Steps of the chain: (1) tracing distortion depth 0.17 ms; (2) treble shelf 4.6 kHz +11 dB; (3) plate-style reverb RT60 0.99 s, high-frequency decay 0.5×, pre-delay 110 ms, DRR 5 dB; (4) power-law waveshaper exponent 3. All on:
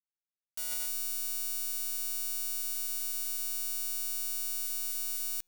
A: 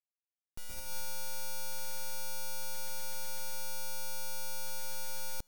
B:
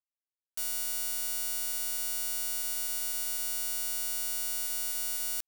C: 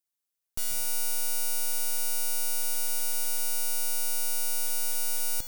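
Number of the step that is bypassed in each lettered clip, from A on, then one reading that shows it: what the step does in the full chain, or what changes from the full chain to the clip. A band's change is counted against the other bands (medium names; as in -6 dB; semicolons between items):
2, crest factor change -12.5 dB; 3, crest factor change -3.0 dB; 4, crest factor change -9.0 dB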